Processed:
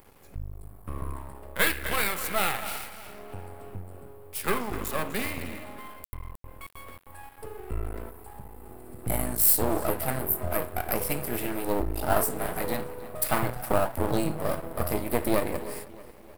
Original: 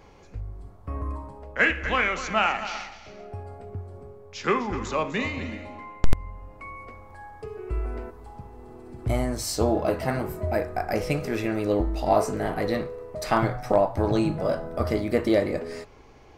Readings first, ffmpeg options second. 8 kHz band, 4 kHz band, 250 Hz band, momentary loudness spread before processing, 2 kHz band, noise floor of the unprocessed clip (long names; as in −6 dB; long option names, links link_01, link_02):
+7.5 dB, −1.0 dB, −5.0 dB, 19 LU, −4.0 dB, −49 dBFS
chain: -filter_complex "[0:a]asplit=2[link_01][link_02];[link_02]adelay=312,lowpass=frequency=4800:poles=1,volume=-17dB,asplit=2[link_03][link_04];[link_04]adelay=312,lowpass=frequency=4800:poles=1,volume=0.52,asplit=2[link_05][link_06];[link_06]adelay=312,lowpass=frequency=4800:poles=1,volume=0.52,asplit=2[link_07][link_08];[link_08]adelay=312,lowpass=frequency=4800:poles=1,volume=0.52,asplit=2[link_09][link_10];[link_10]adelay=312,lowpass=frequency=4800:poles=1,volume=0.52[link_11];[link_01][link_03][link_05][link_07][link_09][link_11]amix=inputs=6:normalize=0,aeval=exprs='max(val(0),0)':channel_layout=same,aexciter=amount=12.6:drive=4.9:freq=8900"